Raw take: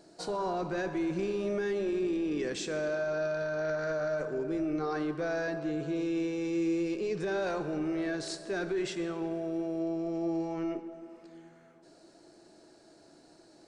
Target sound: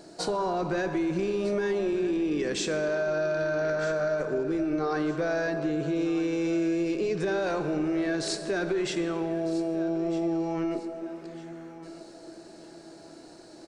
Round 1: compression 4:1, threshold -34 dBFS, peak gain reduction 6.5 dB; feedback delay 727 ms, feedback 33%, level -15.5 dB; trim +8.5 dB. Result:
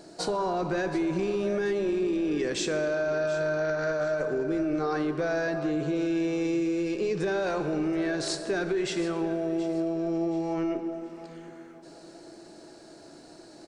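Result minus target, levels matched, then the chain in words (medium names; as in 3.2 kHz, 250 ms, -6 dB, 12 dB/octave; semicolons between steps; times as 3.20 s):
echo 525 ms early
compression 4:1, threshold -34 dBFS, peak gain reduction 6.5 dB; feedback delay 1252 ms, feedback 33%, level -15.5 dB; trim +8.5 dB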